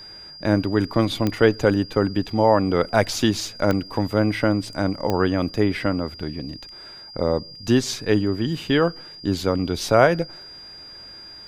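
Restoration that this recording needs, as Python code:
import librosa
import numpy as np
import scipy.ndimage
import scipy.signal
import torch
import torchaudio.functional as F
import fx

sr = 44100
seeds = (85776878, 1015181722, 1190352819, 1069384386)

y = fx.fix_declick_ar(x, sr, threshold=10.0)
y = fx.notch(y, sr, hz=4800.0, q=30.0)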